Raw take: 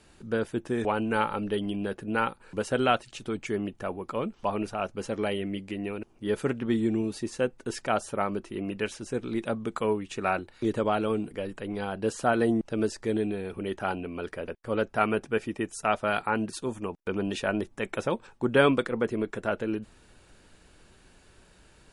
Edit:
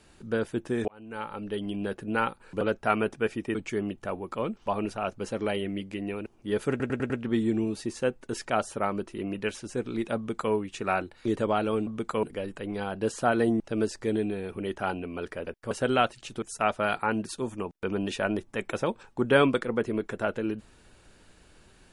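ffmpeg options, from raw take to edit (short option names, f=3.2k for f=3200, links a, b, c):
-filter_complex "[0:a]asplit=12[a][b][c][d][e][f][g][h][i][j][k][l];[a]atrim=end=0.88,asetpts=PTS-STARTPTS,afade=t=out:st=0.876:d=0.004:c=hsin[m];[b]atrim=start=0.88:end=2.612,asetpts=PTS-STARTPTS,afade=t=in:d=1[n];[c]atrim=start=14.718:end=15.662[o];[d]atrim=start=3.318:end=6.572[p];[e]atrim=start=6.468:end=6.572[q];[f]atrim=start=6.468:end=6.572[r];[g]atrim=start=6.468:end=6.572[s];[h]atrim=start=6.468:end=11.242[t];[i]atrim=start=9.538:end=9.902[u];[j]atrim=start=11.238:end=14.722[v];[k]atrim=start=2.608:end=3.322[w];[l]atrim=start=15.658[x];[m][n]concat=n=2:v=0:a=1[y];[y][o]acrossfade=d=0.004:c1=hsin:c2=hsin[z];[z][p]acrossfade=d=0.004:c1=hsin:c2=hsin[aa];[aa][q]acrossfade=d=0.004:c1=hsin:c2=hsin[ab];[ab][r]acrossfade=d=0.004:c1=hsin:c2=hsin[ac];[ac][s]acrossfade=d=0.004:c1=hsin:c2=hsin[ad];[ad][t]acrossfade=d=0.004:c1=hsin:c2=hsin[ae];[ae][u]acrossfade=d=0.004:c1=hsin:c2=hsin[af];[af][v]acrossfade=d=0.004:c1=hsin:c2=hsin[ag];[ag][w]acrossfade=d=0.004:c1=hsin:c2=hsin[ah];[ah][x]acrossfade=d=0.004:c1=hsin:c2=hsin"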